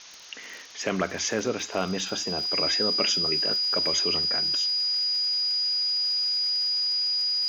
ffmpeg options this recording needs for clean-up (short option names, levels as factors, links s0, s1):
-af "adeclick=t=4,bandreject=f=4900:w=30,afftdn=nr=30:nf=-41"